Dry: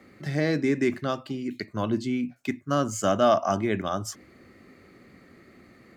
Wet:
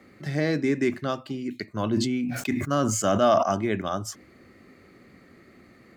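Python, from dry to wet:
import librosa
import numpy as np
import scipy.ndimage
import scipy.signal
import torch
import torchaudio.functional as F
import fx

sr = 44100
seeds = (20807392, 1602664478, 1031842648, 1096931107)

y = fx.sustainer(x, sr, db_per_s=33.0, at=(1.8, 3.43))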